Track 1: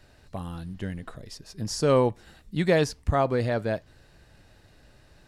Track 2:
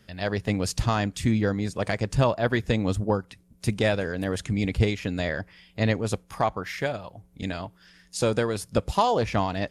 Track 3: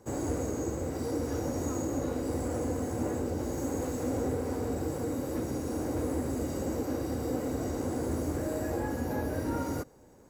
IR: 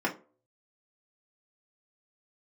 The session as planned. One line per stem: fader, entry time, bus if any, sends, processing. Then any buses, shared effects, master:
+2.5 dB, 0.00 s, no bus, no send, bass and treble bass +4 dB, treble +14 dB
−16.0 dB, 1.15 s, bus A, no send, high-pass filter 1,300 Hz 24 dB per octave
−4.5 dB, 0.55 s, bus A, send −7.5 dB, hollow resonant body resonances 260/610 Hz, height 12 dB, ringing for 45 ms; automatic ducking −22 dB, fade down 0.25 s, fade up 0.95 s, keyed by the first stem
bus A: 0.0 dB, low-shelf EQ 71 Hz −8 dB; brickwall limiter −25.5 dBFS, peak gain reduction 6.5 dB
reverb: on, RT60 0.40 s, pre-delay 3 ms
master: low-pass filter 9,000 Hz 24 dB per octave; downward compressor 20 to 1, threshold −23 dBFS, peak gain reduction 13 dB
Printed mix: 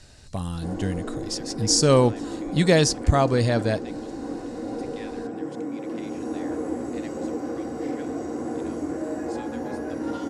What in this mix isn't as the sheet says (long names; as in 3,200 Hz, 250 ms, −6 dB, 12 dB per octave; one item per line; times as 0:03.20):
stem 3: missing hollow resonant body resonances 260/610 Hz, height 12 dB, ringing for 45 ms
master: missing downward compressor 20 to 1, threshold −23 dBFS, peak gain reduction 13 dB